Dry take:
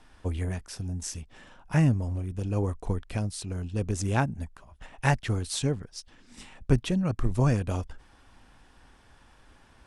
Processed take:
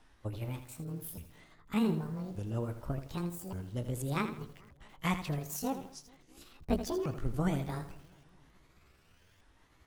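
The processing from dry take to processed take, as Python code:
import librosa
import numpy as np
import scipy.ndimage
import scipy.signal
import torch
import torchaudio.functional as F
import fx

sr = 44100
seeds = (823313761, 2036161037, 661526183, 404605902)

y = fx.pitch_ramps(x, sr, semitones=12.0, every_ms=1176)
y = fx.echo_bbd(y, sr, ms=216, stages=2048, feedback_pct=60, wet_db=-23.5)
y = fx.echo_crushed(y, sr, ms=81, feedback_pct=35, bits=8, wet_db=-10.0)
y = F.gain(torch.from_numpy(y), -7.0).numpy()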